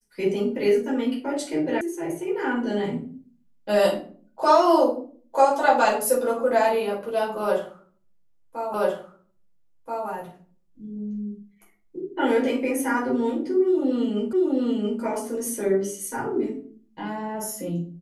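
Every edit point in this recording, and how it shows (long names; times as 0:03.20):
0:01.81: cut off before it has died away
0:08.74: the same again, the last 1.33 s
0:14.33: the same again, the last 0.68 s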